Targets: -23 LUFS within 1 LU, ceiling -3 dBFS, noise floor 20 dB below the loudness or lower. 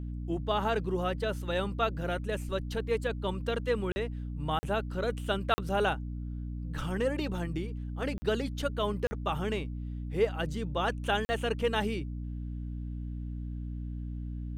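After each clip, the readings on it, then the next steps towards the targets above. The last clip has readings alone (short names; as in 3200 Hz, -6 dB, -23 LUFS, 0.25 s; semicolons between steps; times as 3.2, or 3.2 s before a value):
dropouts 6; longest dropout 40 ms; hum 60 Hz; harmonics up to 300 Hz; hum level -35 dBFS; loudness -33.0 LUFS; peak -15.0 dBFS; loudness target -23.0 LUFS
-> interpolate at 3.92/4.59/5.54/8.18/9.07/11.25, 40 ms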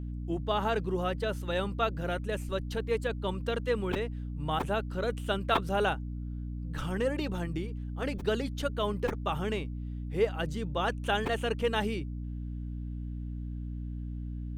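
dropouts 0; hum 60 Hz; harmonics up to 300 Hz; hum level -35 dBFS
-> de-hum 60 Hz, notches 5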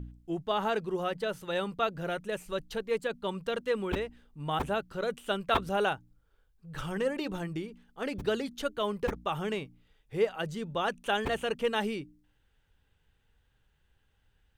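hum none; loudness -33.0 LUFS; peak -14.0 dBFS; loudness target -23.0 LUFS
-> gain +10 dB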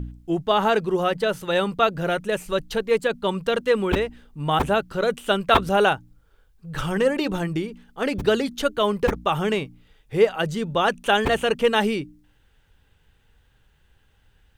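loudness -23.0 LUFS; peak -4.0 dBFS; noise floor -61 dBFS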